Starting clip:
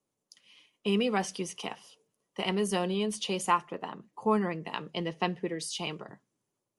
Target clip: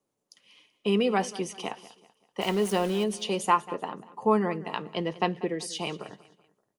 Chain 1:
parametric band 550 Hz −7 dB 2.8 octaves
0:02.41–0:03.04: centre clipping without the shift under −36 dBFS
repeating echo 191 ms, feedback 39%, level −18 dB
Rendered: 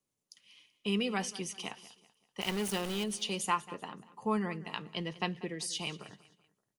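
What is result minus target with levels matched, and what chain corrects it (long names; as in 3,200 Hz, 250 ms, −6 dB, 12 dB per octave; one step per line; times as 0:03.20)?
500 Hz band −4.0 dB
parametric band 550 Hz +4.5 dB 2.8 octaves
0:02.41–0:03.04: centre clipping without the shift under −36 dBFS
repeating echo 191 ms, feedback 39%, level −18 dB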